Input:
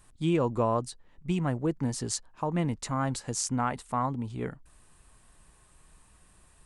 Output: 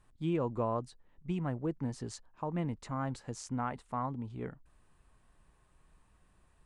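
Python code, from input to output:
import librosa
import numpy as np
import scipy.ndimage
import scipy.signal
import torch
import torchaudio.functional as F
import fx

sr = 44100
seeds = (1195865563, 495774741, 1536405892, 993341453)

y = fx.lowpass(x, sr, hz=2300.0, slope=6)
y = y * 10.0 ** (-6.0 / 20.0)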